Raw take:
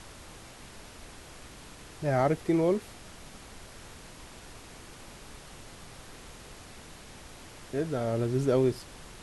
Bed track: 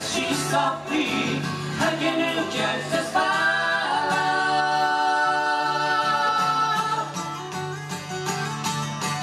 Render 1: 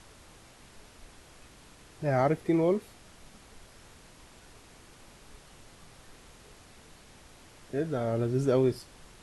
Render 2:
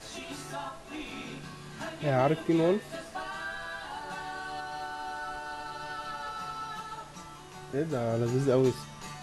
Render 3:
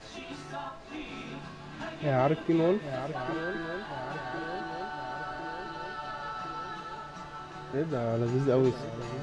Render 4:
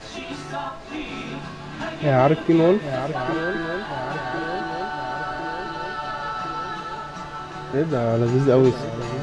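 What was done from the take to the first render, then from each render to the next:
noise reduction from a noise print 6 dB
mix in bed track −16.5 dB
high-frequency loss of the air 110 metres; feedback echo with a long and a short gap by turns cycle 1,055 ms, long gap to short 3 to 1, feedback 58%, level −11 dB
level +9 dB

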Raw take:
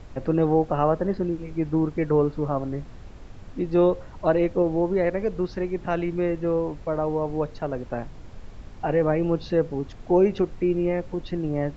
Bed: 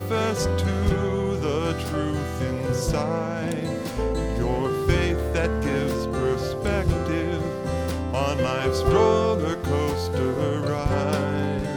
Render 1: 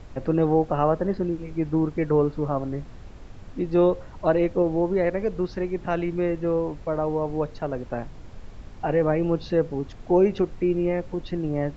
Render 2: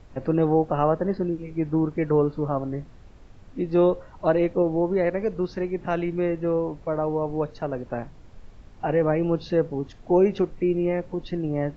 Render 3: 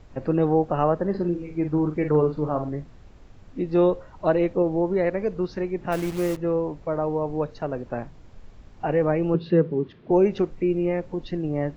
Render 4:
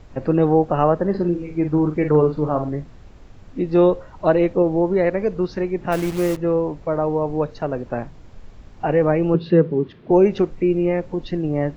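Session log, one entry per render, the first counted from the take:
no processing that can be heard
noise reduction from a noise print 6 dB
0:01.10–0:02.70: double-tracking delay 46 ms −7 dB; 0:05.92–0:06.37: hold until the input has moved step −31.5 dBFS; 0:09.34–0:10.11: loudspeaker in its box 110–3,800 Hz, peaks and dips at 170 Hz +9 dB, 380 Hz +9 dB, 750 Hz −10 dB
level +4.5 dB

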